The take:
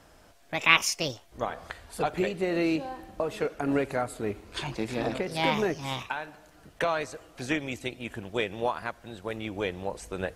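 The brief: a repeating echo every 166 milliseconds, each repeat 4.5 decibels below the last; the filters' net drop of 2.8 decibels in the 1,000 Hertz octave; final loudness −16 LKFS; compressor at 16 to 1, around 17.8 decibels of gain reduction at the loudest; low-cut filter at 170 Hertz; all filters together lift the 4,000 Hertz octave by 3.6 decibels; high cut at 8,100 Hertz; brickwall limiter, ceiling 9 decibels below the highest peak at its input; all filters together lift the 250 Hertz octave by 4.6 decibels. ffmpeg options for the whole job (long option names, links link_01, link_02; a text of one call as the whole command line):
ffmpeg -i in.wav -af "highpass=170,lowpass=8100,equalizer=frequency=250:width_type=o:gain=7.5,equalizer=frequency=1000:width_type=o:gain=-4.5,equalizer=frequency=4000:width_type=o:gain=5.5,acompressor=threshold=-30dB:ratio=16,alimiter=level_in=1dB:limit=-24dB:level=0:latency=1,volume=-1dB,aecho=1:1:166|332|498|664|830|996|1162|1328|1494:0.596|0.357|0.214|0.129|0.0772|0.0463|0.0278|0.0167|0.01,volume=20dB" out.wav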